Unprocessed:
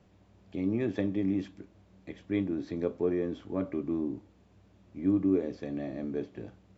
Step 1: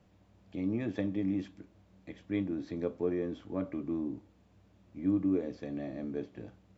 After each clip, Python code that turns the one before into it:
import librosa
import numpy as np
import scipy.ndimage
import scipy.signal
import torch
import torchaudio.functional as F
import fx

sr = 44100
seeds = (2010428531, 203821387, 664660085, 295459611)

y = fx.notch(x, sr, hz=390.0, q=12.0)
y = y * 10.0 ** (-2.5 / 20.0)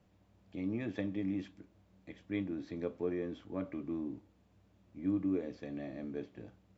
y = fx.dynamic_eq(x, sr, hz=2400.0, q=0.79, threshold_db=-55.0, ratio=4.0, max_db=4)
y = y * 10.0 ** (-4.0 / 20.0)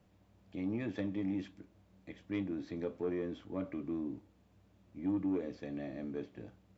y = 10.0 ** (-27.0 / 20.0) * np.tanh(x / 10.0 ** (-27.0 / 20.0))
y = y * 10.0 ** (1.0 / 20.0)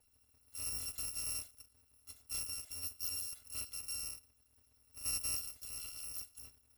y = fx.bit_reversed(x, sr, seeds[0], block=256)
y = y * 10.0 ** (-4.5 / 20.0)